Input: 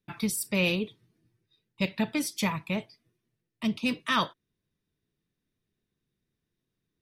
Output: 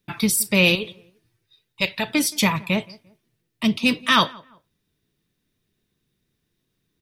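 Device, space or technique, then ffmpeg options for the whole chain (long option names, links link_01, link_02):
presence and air boost: -filter_complex "[0:a]asettb=1/sr,asplit=3[link_01][link_02][link_03];[link_01]atrim=end=0.754[link_04];[link_02]atrim=start=0.75:end=2.1,asetpts=PTS-STARTPTS,afade=type=in:duration=0.004:curve=qsin,afade=type=out:start_time=1.346:duration=0.004:curve=qsin,equalizer=frequency=220:width_type=o:width=1.6:gain=-11.5[link_05];[link_03]atrim=start=2.096[link_06];[link_04][link_05]acrossfade=duration=0.004:curve1=hsin:curve2=qsin[link_07];[link_07][link_06]acrossfade=duration=0.004:curve1=qsin:curve2=hsin,equalizer=frequency=3500:width_type=o:width=1.4:gain=3,highshelf=frequency=9300:gain=5,asplit=2[link_08][link_09];[link_09]adelay=173,lowpass=frequency=1700:poles=1,volume=-23dB,asplit=2[link_10][link_11];[link_11]adelay=173,lowpass=frequency=1700:poles=1,volume=0.33[link_12];[link_08][link_10][link_12]amix=inputs=3:normalize=0,volume=8dB"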